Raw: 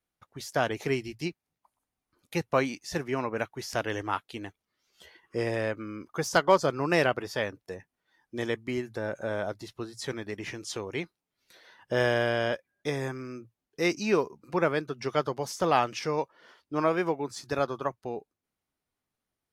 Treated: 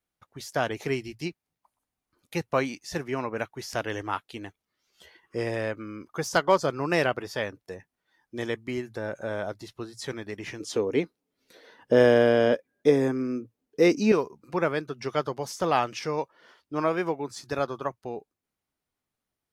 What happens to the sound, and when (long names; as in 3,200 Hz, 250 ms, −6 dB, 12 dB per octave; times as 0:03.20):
0:10.60–0:14.12: hollow resonant body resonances 270/440 Hz, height 13 dB, ringing for 30 ms